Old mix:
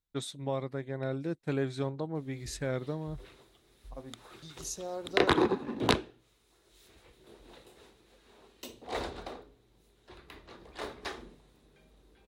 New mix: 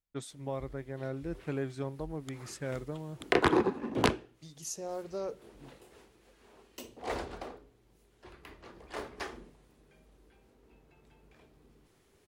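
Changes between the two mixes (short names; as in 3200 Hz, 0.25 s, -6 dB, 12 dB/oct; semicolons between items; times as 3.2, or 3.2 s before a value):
first voice -3.5 dB; background: entry -1.85 s; master: add bell 3800 Hz -9.5 dB 0.26 oct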